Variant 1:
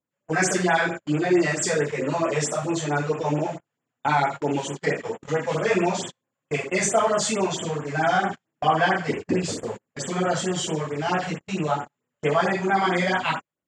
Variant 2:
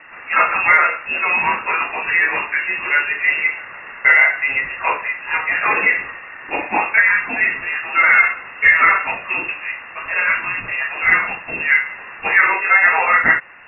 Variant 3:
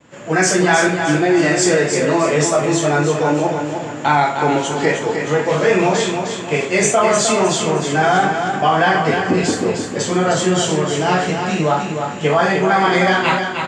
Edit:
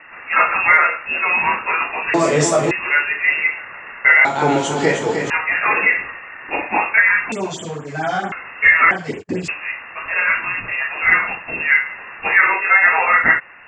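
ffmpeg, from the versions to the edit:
-filter_complex "[2:a]asplit=2[s0][s1];[0:a]asplit=2[s2][s3];[1:a]asplit=5[s4][s5][s6][s7][s8];[s4]atrim=end=2.142[s9];[s0]atrim=start=2.138:end=2.712[s10];[s5]atrim=start=2.708:end=4.252[s11];[s1]atrim=start=4.248:end=5.302[s12];[s6]atrim=start=5.298:end=7.322[s13];[s2]atrim=start=7.318:end=8.322[s14];[s7]atrim=start=8.318:end=8.912[s15];[s3]atrim=start=8.908:end=9.482[s16];[s8]atrim=start=9.478[s17];[s9][s10]acrossfade=d=0.004:c1=hsin:c2=hsin[s18];[s18][s11]acrossfade=d=0.004:c1=hsin:c2=hsin[s19];[s19][s12]acrossfade=d=0.004:c1=hsin:c2=hsin[s20];[s20][s13]acrossfade=d=0.004:c1=hsin:c2=hsin[s21];[s21][s14]acrossfade=d=0.004:c1=hsin:c2=hsin[s22];[s22][s15]acrossfade=d=0.004:c1=hsin:c2=hsin[s23];[s23][s16]acrossfade=d=0.004:c1=hsin:c2=hsin[s24];[s24][s17]acrossfade=d=0.004:c1=hsin:c2=hsin"

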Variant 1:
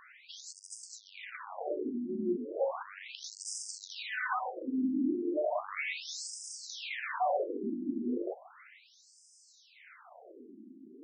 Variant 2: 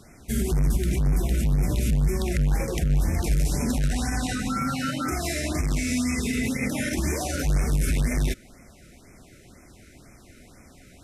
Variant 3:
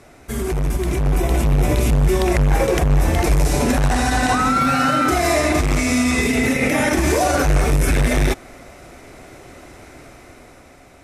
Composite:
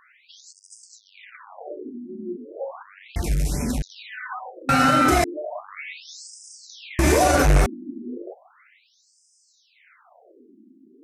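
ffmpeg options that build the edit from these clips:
-filter_complex "[2:a]asplit=2[s0][s1];[0:a]asplit=4[s2][s3][s4][s5];[s2]atrim=end=3.162[s6];[1:a]atrim=start=3.158:end=3.822[s7];[s3]atrim=start=3.818:end=4.692[s8];[s0]atrim=start=4.688:end=5.242[s9];[s4]atrim=start=5.238:end=6.992[s10];[s1]atrim=start=6.988:end=7.662[s11];[s5]atrim=start=7.658[s12];[s6][s7]acrossfade=d=0.004:c1=hsin:c2=hsin[s13];[s13][s8]acrossfade=d=0.004:c1=hsin:c2=hsin[s14];[s14][s9]acrossfade=d=0.004:c1=hsin:c2=hsin[s15];[s15][s10]acrossfade=d=0.004:c1=hsin:c2=hsin[s16];[s16][s11]acrossfade=d=0.004:c1=hsin:c2=hsin[s17];[s17][s12]acrossfade=d=0.004:c1=hsin:c2=hsin"

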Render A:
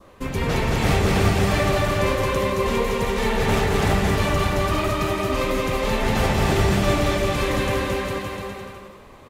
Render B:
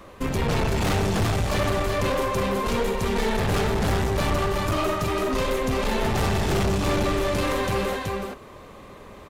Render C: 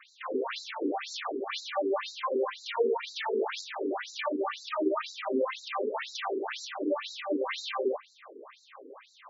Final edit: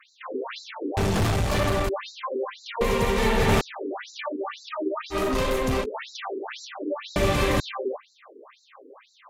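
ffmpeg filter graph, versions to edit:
-filter_complex "[1:a]asplit=2[s0][s1];[0:a]asplit=2[s2][s3];[2:a]asplit=5[s4][s5][s6][s7][s8];[s4]atrim=end=0.972[s9];[s0]atrim=start=0.968:end=1.892[s10];[s5]atrim=start=1.888:end=2.812[s11];[s2]atrim=start=2.808:end=3.612[s12];[s6]atrim=start=3.608:end=5.16[s13];[s1]atrim=start=5.1:end=5.86[s14];[s7]atrim=start=5.8:end=7.162[s15];[s3]atrim=start=7.158:end=7.602[s16];[s8]atrim=start=7.598[s17];[s9][s10]acrossfade=d=0.004:c1=hsin:c2=hsin[s18];[s18][s11]acrossfade=d=0.004:c1=hsin:c2=hsin[s19];[s19][s12]acrossfade=d=0.004:c1=hsin:c2=hsin[s20];[s20][s13]acrossfade=d=0.004:c1=hsin:c2=hsin[s21];[s21][s14]acrossfade=d=0.06:c1=tri:c2=tri[s22];[s22][s15]acrossfade=d=0.06:c1=tri:c2=tri[s23];[s23][s16]acrossfade=d=0.004:c1=hsin:c2=hsin[s24];[s24][s17]acrossfade=d=0.004:c1=hsin:c2=hsin"

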